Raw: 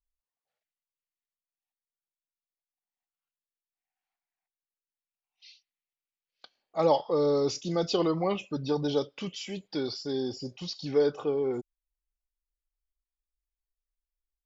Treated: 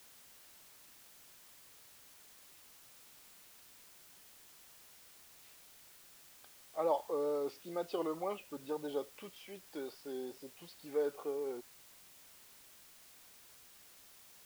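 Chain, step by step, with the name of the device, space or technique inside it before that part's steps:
wax cylinder (band-pass filter 360–2,200 Hz; tape wow and flutter; white noise bed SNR 16 dB)
level −8 dB

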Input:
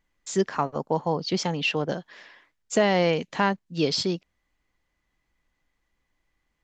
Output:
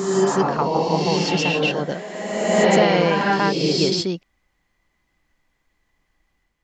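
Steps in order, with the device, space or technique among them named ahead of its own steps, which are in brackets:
reverse reverb (reversed playback; convolution reverb RT60 1.9 s, pre-delay 109 ms, DRR −3 dB; reversed playback)
level +2 dB

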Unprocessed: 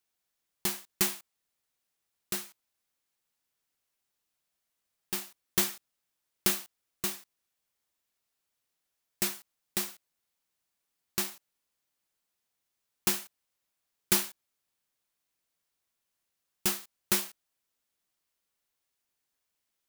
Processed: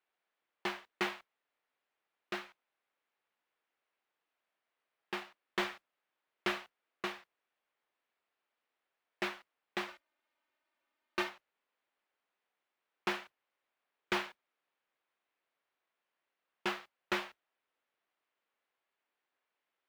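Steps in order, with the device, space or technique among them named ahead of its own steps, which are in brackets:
carbon microphone (band-pass filter 370–3,400 Hz; soft clipping −27 dBFS, distortion −14 dB; noise that follows the level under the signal 14 dB)
bass and treble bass 0 dB, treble −14 dB
0:09.88–0:11.29: comb filter 3.3 ms, depth 81%
level +4.5 dB

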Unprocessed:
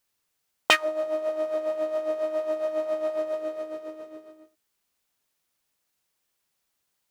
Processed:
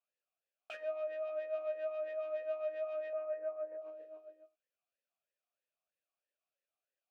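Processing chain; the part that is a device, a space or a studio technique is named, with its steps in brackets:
talk box (tube saturation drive 33 dB, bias 0.6; formant filter swept between two vowels a-e 3.1 Hz)
0:03.13–0:03.82: inverse Chebyshev low-pass filter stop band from 8,400 Hz, stop band 70 dB
level +1.5 dB

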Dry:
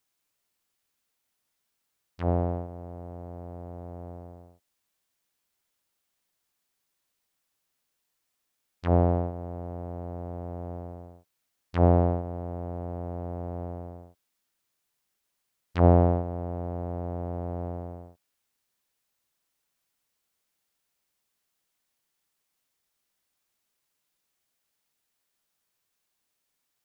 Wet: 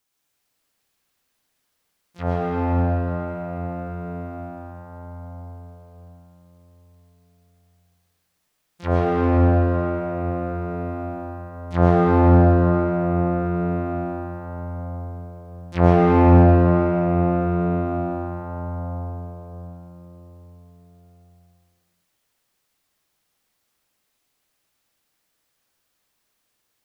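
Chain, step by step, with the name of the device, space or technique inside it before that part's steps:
shimmer-style reverb (pitch-shifted copies added +12 semitones −10 dB; convolution reverb RT60 5.5 s, pre-delay 102 ms, DRR −5.5 dB)
level +2 dB

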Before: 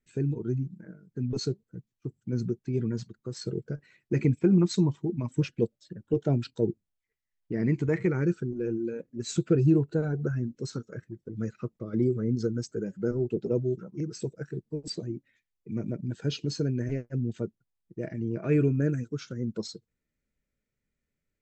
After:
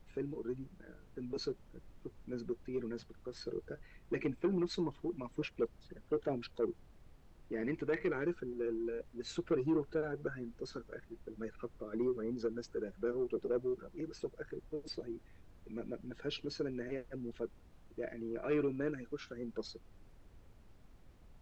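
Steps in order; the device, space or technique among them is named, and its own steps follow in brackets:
aircraft cabin announcement (band-pass filter 390–3,500 Hz; soft clipping −23.5 dBFS, distortion −16 dB; brown noise bed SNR 17 dB)
level −2 dB

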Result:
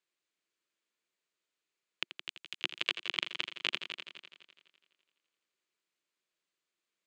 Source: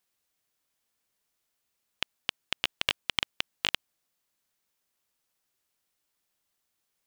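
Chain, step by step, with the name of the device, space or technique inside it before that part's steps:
0:02.17–0:02.58: first difference
television speaker (loudspeaker in its box 170–7,300 Hz, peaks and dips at 240 Hz −6 dB, 350 Hz +5 dB, 790 Hz −9 dB, 2,400 Hz +3 dB, 5,600 Hz −7 dB)
echo machine with several playback heads 84 ms, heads all three, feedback 50%, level −13 dB
level −5 dB

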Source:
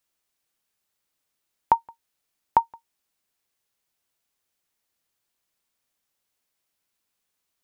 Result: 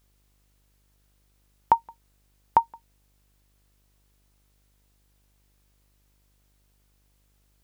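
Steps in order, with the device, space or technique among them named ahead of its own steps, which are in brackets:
video cassette with head-switching buzz (hum with harmonics 50 Hz, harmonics 31, −67 dBFS −8 dB per octave; white noise bed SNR 38 dB)

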